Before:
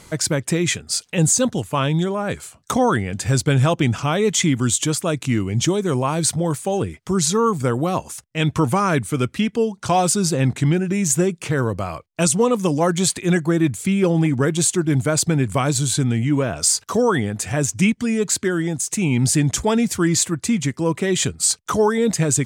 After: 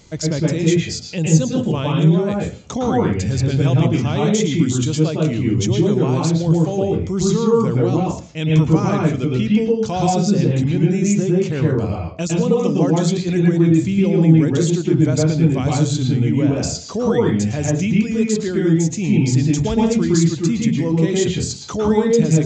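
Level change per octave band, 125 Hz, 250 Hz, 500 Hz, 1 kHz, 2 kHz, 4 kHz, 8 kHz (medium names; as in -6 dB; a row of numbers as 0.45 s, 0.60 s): +4.5 dB, +4.5 dB, +2.0 dB, -2.5 dB, -4.0 dB, -3.0 dB, -7.5 dB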